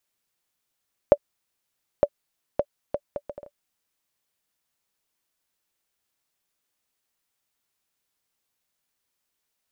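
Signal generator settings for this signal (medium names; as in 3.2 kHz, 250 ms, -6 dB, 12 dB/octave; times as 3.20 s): bouncing ball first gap 0.91 s, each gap 0.62, 578 Hz, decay 56 ms -2.5 dBFS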